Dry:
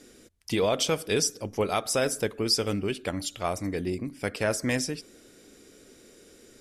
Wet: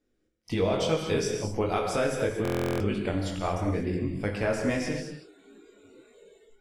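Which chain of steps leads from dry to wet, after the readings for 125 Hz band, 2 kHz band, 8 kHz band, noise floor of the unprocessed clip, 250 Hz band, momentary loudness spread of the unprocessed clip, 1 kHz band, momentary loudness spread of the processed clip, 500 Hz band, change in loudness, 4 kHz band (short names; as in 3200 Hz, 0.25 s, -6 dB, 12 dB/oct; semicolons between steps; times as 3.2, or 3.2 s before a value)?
+3.5 dB, -1.5 dB, -9.5 dB, -55 dBFS, +1.5 dB, 8 LU, +0.5 dB, 5 LU, +0.5 dB, -0.5 dB, -7.5 dB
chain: low shelf 330 Hz -10.5 dB; chorus 2.1 Hz, delay 19 ms, depth 3 ms; AGC gain up to 3.5 dB; RIAA curve playback; non-linear reverb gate 0.26 s flat, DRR 3 dB; spectral noise reduction 21 dB; in parallel at 0 dB: compressor, threshold -27 dBFS, peak gain reduction 9 dB; on the sum: stuck buffer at 2.43, samples 1024, times 15; gain -5 dB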